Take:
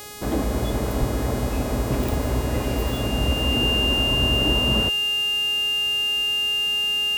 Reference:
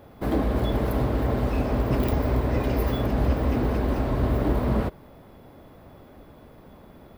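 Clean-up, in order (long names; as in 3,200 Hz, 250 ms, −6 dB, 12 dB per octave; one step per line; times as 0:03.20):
hum removal 416.9 Hz, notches 39
notch filter 2,800 Hz, Q 30
0:00.99–0:01.11: high-pass filter 140 Hz 24 dB per octave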